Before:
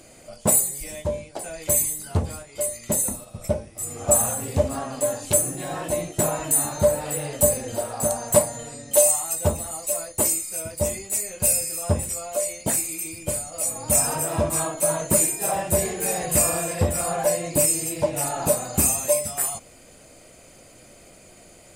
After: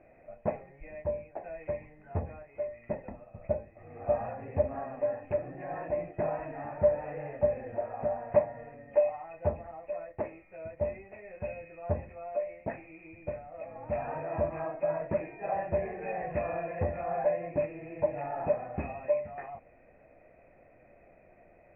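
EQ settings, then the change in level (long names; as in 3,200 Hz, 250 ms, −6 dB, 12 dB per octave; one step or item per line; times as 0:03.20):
Chebyshev low-pass with heavy ripple 2,600 Hz, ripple 9 dB
high-frequency loss of the air 96 metres
low-shelf EQ 72 Hz +6 dB
−4.0 dB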